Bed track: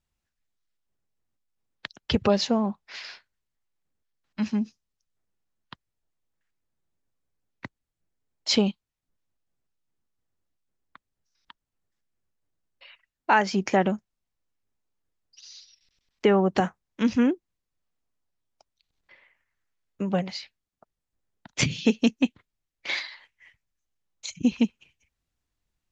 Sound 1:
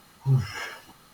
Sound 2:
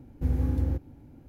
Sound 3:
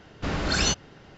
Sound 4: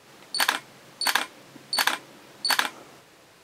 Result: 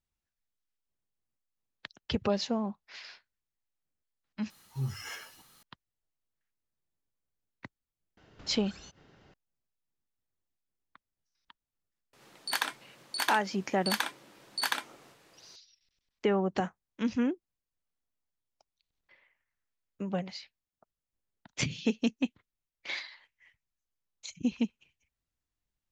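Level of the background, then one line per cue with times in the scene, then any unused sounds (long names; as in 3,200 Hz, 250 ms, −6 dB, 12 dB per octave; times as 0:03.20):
bed track −7.5 dB
0:04.50: overwrite with 1 −11.5 dB + high-shelf EQ 2,700 Hz +11 dB
0:08.17: mix in 3 −10.5 dB + downward compressor 8 to 1, threshold −37 dBFS
0:12.13: mix in 4 −8 dB
not used: 2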